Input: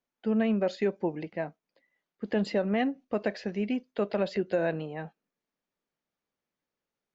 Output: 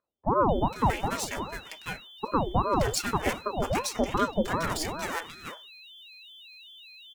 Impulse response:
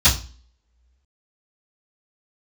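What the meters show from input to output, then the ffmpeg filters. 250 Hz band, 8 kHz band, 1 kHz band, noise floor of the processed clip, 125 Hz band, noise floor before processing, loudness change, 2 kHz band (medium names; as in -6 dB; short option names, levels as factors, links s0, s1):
-2.5 dB, no reading, +12.0 dB, -50 dBFS, +6.0 dB, under -85 dBFS, +1.5 dB, +4.5 dB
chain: -filter_complex "[0:a]aeval=exprs='if(lt(val(0),0),0.447*val(0),val(0))':c=same,highpass=100,equalizer=f=1300:t=o:w=0.77:g=2.5,aecho=1:1:4.9:0.65,aexciter=amount=9.2:drive=5.7:freq=5400,aeval=exprs='val(0)+0.00282*sin(2*PI*3300*n/s)':c=same,acrossover=split=150|720[s0][s1][s2];[s0]adelay=40[s3];[s2]adelay=490[s4];[s3][s1][s4]amix=inputs=3:normalize=0,asplit=2[s5][s6];[1:a]atrim=start_sample=2205,lowpass=2000[s7];[s6][s7]afir=irnorm=-1:irlink=0,volume=0.0422[s8];[s5][s8]amix=inputs=2:normalize=0,aeval=exprs='val(0)*sin(2*PI*490*n/s+490*0.7/2.6*sin(2*PI*2.6*n/s))':c=same,volume=2"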